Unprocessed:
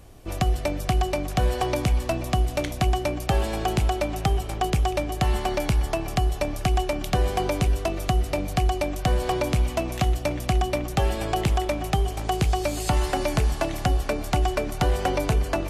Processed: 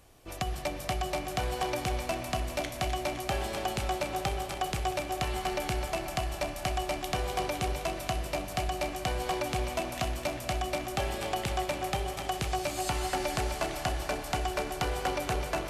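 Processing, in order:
low-shelf EQ 450 Hz −9 dB
feedback echo with a high-pass in the loop 256 ms, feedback 66%, high-pass 280 Hz, level −6.5 dB
on a send at −8 dB: convolution reverb RT60 2.7 s, pre-delay 38 ms
on the sum: level −4.5 dB

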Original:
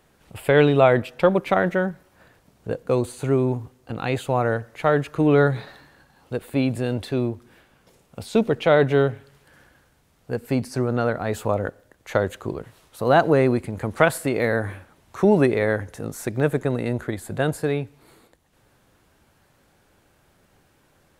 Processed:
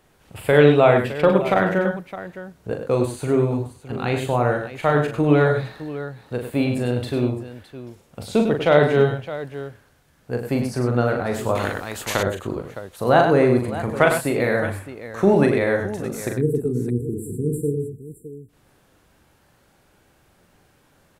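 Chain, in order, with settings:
0:16.29–0:18.49: time-frequency box erased 490–7,300 Hz
multi-tap delay 41/100/123/613 ms −5.5/−7.5/−14/−13.5 dB
0:11.55–0:12.23: every bin compressed towards the loudest bin 2 to 1

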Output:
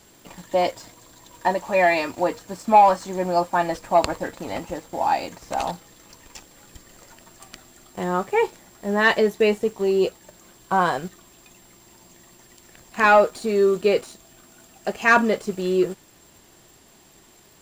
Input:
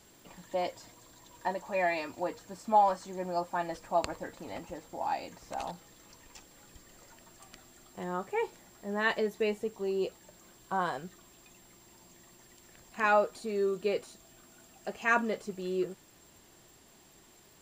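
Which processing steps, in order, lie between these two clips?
leveller curve on the samples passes 1
level +8 dB

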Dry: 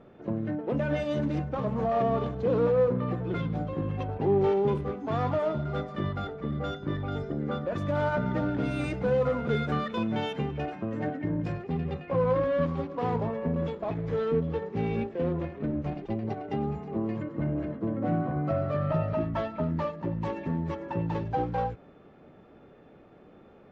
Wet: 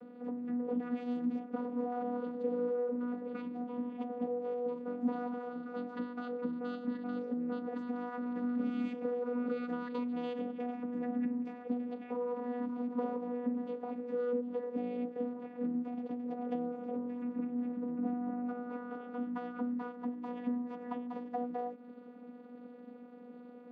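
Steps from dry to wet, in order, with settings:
downward compressor, threshold −36 dBFS, peak gain reduction 15 dB
channel vocoder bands 16, saw 244 Hz
level +3 dB

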